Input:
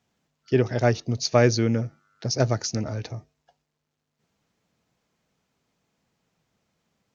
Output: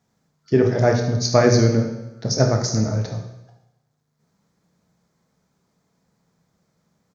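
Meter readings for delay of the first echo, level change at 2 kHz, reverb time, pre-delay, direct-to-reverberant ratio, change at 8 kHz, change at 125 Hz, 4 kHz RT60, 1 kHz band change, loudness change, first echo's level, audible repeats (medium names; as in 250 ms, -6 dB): 74 ms, +2.5 dB, 0.90 s, 17 ms, 2.5 dB, no reading, +5.5 dB, 0.85 s, +4.5 dB, +4.5 dB, -12.0 dB, 1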